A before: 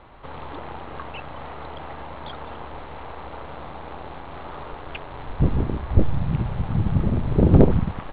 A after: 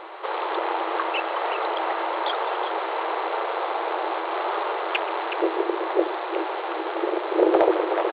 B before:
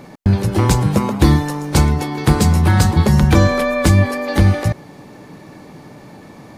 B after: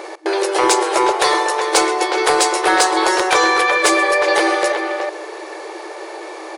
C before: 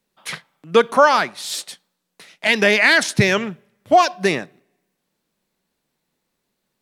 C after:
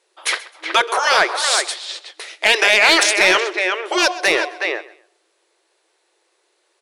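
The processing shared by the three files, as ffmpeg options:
-filter_complex "[0:a]afftfilt=real='re*lt(hypot(re,im),0.794)':imag='im*lt(hypot(re,im),0.794)':win_size=1024:overlap=0.75,asplit=2[link_01][link_02];[link_02]adelay=370,highpass=300,lowpass=3400,asoftclip=type=hard:threshold=-11dB,volume=-7dB[link_03];[link_01][link_03]amix=inputs=2:normalize=0,asplit=2[link_04][link_05];[link_05]acompressor=threshold=-29dB:ratio=6,volume=-2dB[link_06];[link_04][link_06]amix=inputs=2:normalize=0,afftfilt=real='re*between(b*sr/4096,320,11000)':imag='im*between(b*sr/4096,320,11000)':win_size=4096:overlap=0.75,asplit=2[link_07][link_08];[link_08]aecho=0:1:130|260:0.106|0.0286[link_09];[link_07][link_09]amix=inputs=2:normalize=0,acontrast=86,volume=-1dB"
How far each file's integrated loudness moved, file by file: −3.5, −0.5, +1.0 LU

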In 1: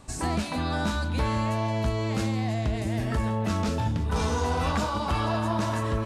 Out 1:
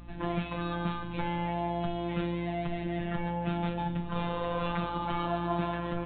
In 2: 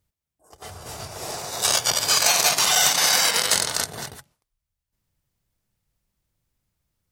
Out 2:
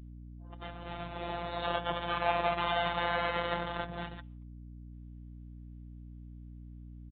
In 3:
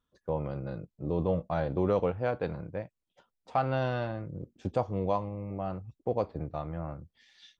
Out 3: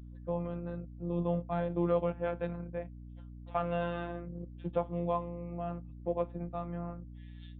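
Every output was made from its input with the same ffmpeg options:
-filter_complex "[0:a]acrossover=split=120|1400[link_01][link_02][link_03];[link_03]acompressor=threshold=-31dB:ratio=4[link_04];[link_01][link_02][link_04]amix=inputs=3:normalize=0,afftfilt=real='hypot(re,im)*cos(PI*b)':imag='0':win_size=1024:overlap=0.75,aresample=8000,aresample=44100,aeval=exprs='val(0)+0.00501*(sin(2*PI*60*n/s)+sin(2*PI*2*60*n/s)/2+sin(2*PI*3*60*n/s)/3+sin(2*PI*4*60*n/s)/4+sin(2*PI*5*60*n/s)/5)':channel_layout=same"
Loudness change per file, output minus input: −5.5, −15.5, −3.0 LU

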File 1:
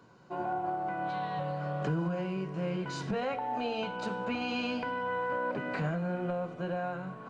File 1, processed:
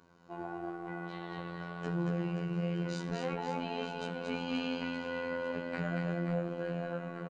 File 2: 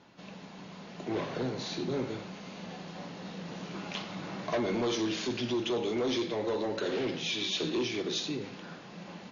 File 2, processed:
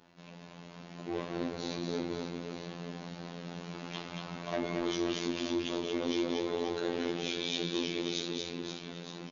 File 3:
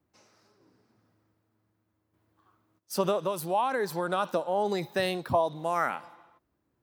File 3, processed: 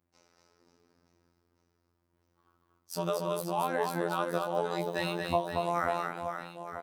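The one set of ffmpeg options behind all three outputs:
-af "aecho=1:1:230|529|917.7|1423|2080:0.631|0.398|0.251|0.158|0.1,afftfilt=real='hypot(re,im)*cos(PI*b)':imag='0':win_size=2048:overlap=0.75,volume=-1dB"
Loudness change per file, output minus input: −3.0, −2.0, −3.0 LU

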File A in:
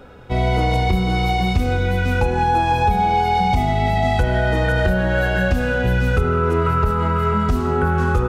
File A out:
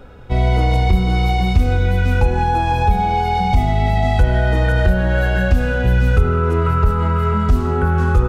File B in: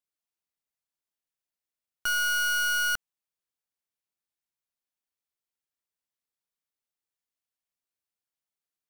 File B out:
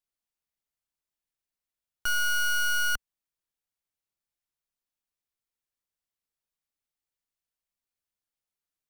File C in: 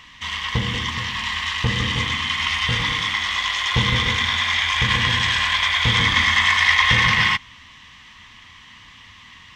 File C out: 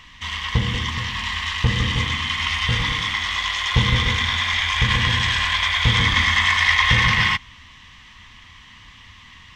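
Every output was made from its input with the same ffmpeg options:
-af "lowshelf=frequency=76:gain=11.5,volume=-1dB"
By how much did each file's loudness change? +2.0, −1.0, −0.5 LU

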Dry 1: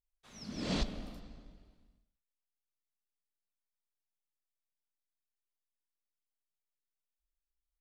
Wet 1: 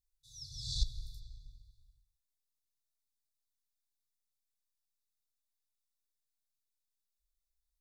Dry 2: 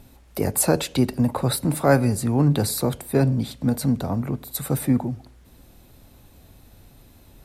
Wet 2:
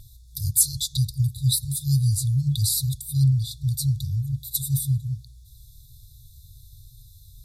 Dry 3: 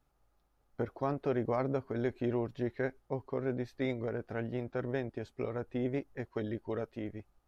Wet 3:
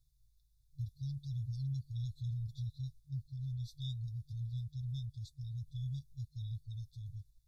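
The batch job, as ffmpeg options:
-af "afftfilt=real='re*(1-between(b*sr/4096,150,3400))':imag='im*(1-between(b*sr/4096,150,3400))':win_size=4096:overlap=0.75,volume=3.5dB"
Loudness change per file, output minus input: −1.5, −1.0, −6.0 LU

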